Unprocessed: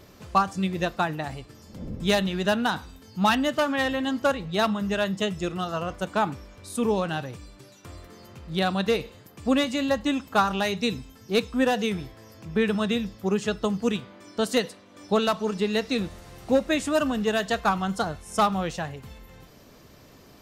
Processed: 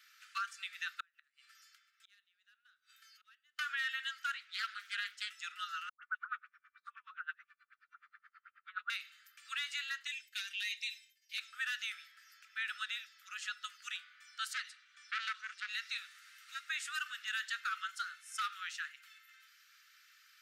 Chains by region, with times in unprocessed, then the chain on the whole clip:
0:01.00–0:03.59: gate with flip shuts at −21 dBFS, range −35 dB + downward compressor 2 to 1, threshold −43 dBFS + Butterworth band-reject 940 Hz, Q 4
0:04.30–0:05.30: low shelf with overshoot 270 Hz +7 dB, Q 3 + highs frequency-modulated by the lows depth 0.32 ms
0:05.89–0:08.90: all-pass dispersion highs, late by 140 ms, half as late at 930 Hz + auto-filter low-pass sine 9.4 Hz 290–1,600 Hz
0:10.07–0:11.38: downward expander −42 dBFS + Butterworth high-pass 1,900 Hz 48 dB per octave + comb filter 3.3 ms, depth 54%
0:14.53–0:15.69: low-pass filter 8,400 Hz + saturating transformer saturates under 2,000 Hz
whole clip: Butterworth high-pass 1,300 Hz 96 dB per octave; high-shelf EQ 3,500 Hz −8.5 dB; brickwall limiter −26.5 dBFS; level −1.5 dB

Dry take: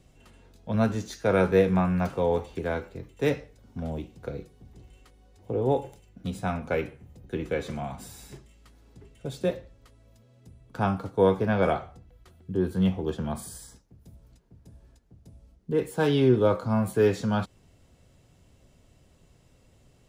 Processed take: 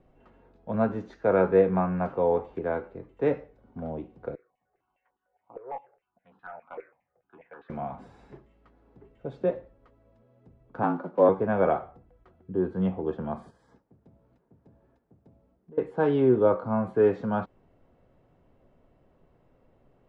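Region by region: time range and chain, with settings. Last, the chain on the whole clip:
0:04.35–0:07.70: auto-filter band-pass saw down 4.9 Hz 740–2,600 Hz + hard clipping −30 dBFS + step-sequenced phaser 6.6 Hz 830–2,200 Hz
0:10.83–0:11.29: one scale factor per block 5 bits + high-shelf EQ 5,200 Hz −7.5 dB + frequency shifter +72 Hz
0:13.50–0:15.78: one scale factor per block 7 bits + high-pass filter 85 Hz + downward compressor, threshold −46 dBFS
whole clip: low-pass filter 1,200 Hz 12 dB per octave; parametric band 73 Hz −12 dB 2.8 octaves; level +3 dB

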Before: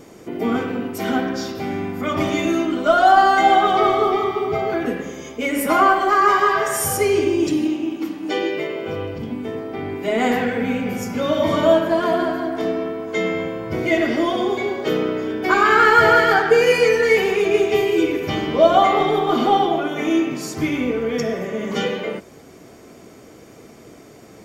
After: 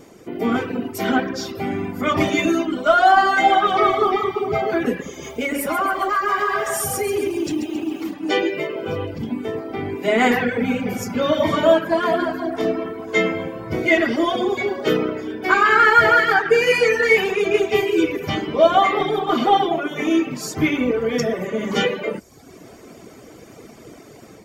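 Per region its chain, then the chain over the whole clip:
0:05.09–0:08.14: downward compressor 4 to 1, threshold −23 dBFS + feedback echo at a low word length 135 ms, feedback 55%, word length 8 bits, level −7 dB
whole clip: reverb reduction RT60 0.77 s; dynamic equaliser 1,900 Hz, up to +5 dB, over −29 dBFS, Q 0.92; automatic gain control gain up to 5 dB; level −1.5 dB

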